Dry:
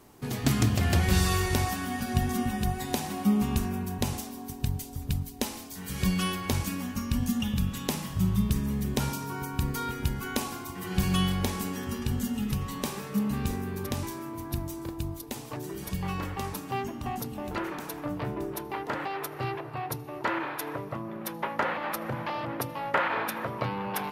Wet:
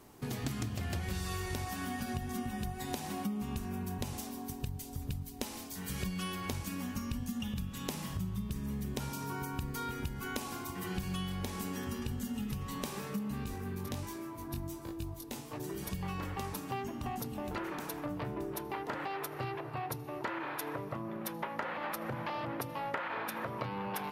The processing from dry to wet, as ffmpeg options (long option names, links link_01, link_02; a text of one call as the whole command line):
ffmpeg -i in.wav -filter_complex "[0:a]asettb=1/sr,asplit=3[link_01][link_02][link_03];[link_01]atrim=end=13.444[link_04];[link_02]atrim=start=13.44:end=15.6,asetpts=PTS-STARTPTS,afade=type=in:duration=0.004:curve=qsin,afade=type=out:start_time=2.156:duration=0.004:curve=qsin,flanger=delay=18.5:depth=2.9:speed=1.3[link_05];[link_03]atrim=start=15.596[link_06];[link_04][link_05]acrossfade=duration=0.004:curve1=hsin:curve2=qsin[link_07];[link_07][link_06]acrossfade=duration=0.004:curve1=qsin:curve2=hsin,acompressor=threshold=-32dB:ratio=6,volume=-2dB" out.wav